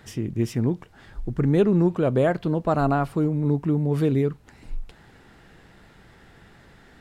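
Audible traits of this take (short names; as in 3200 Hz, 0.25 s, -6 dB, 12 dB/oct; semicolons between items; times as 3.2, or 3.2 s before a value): noise floor -53 dBFS; spectral tilt -7.5 dB/oct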